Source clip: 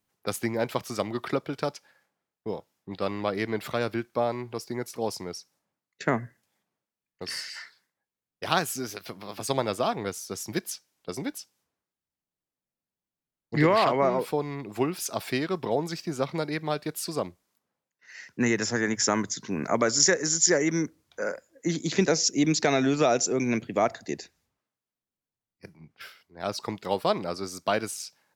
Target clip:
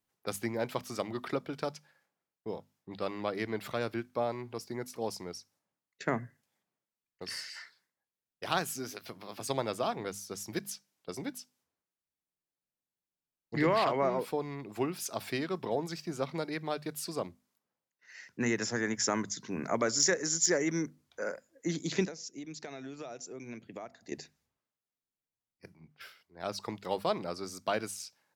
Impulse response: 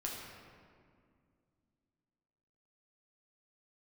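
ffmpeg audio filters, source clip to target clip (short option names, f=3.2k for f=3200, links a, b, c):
-filter_complex "[0:a]bandreject=f=50:t=h:w=6,bandreject=f=100:t=h:w=6,bandreject=f=150:t=h:w=6,bandreject=f=200:t=h:w=6,bandreject=f=250:t=h:w=6,asettb=1/sr,asplit=3[a][b][c];[a]atrim=end=22.054[d];[b]atrim=start=22.05:end=24.12,asetpts=PTS-STARTPTS,afade=t=in:d=0.004:c=qsin,afade=t=out:st=2.066:d=0.004:c=qsin,acompressor=threshold=-37dB:ratio=5[e];[c]atrim=start=24.116[f];[d][e]acrossfade=d=0.004:c1=hsin:c2=qsin[g];[g][f]acrossfade=d=0.004:c1=qsin:c2=hsin,asoftclip=type=tanh:threshold=-6.5dB,volume=-5.5dB"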